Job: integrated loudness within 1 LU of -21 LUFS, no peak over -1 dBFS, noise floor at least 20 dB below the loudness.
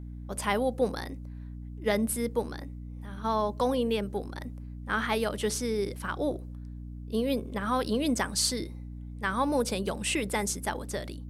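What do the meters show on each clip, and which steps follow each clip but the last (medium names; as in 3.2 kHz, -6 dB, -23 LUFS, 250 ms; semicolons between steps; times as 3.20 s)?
hum 60 Hz; highest harmonic 300 Hz; hum level -38 dBFS; loudness -30.0 LUFS; peak level -12.0 dBFS; loudness target -21.0 LUFS
-> hum notches 60/120/180/240/300 Hz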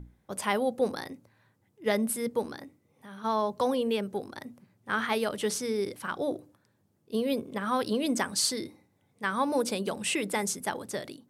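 hum not found; loudness -30.5 LUFS; peak level -12.0 dBFS; loudness target -21.0 LUFS
-> trim +9.5 dB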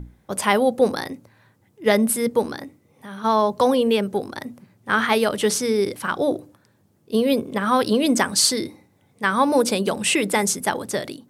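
loudness -21.0 LUFS; peak level -2.5 dBFS; noise floor -61 dBFS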